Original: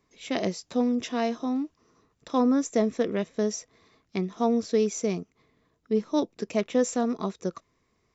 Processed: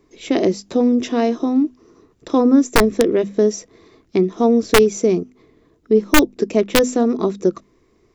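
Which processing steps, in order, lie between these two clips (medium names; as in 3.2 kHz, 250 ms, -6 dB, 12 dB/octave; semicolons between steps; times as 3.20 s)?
peaking EQ 350 Hz +12.5 dB 0.92 oct; in parallel at -1.5 dB: compression 20:1, threshold -24 dBFS, peak gain reduction 14 dB; on the sum: integer overflow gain 6.5 dB; bass shelf 79 Hz +10.5 dB; hum notches 50/100/150/200/250 Hz; trim +1.5 dB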